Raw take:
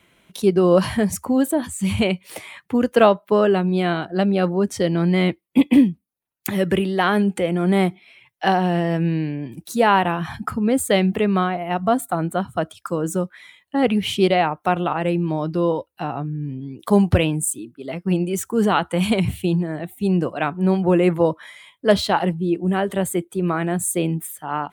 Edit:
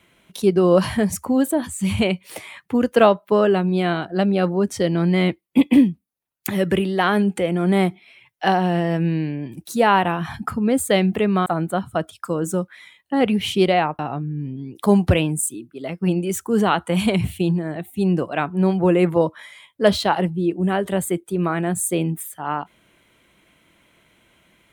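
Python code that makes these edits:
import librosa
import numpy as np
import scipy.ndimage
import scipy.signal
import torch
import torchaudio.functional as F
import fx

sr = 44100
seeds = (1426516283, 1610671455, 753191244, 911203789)

y = fx.edit(x, sr, fx.cut(start_s=11.46, length_s=0.62),
    fx.cut(start_s=14.61, length_s=1.42), tone=tone)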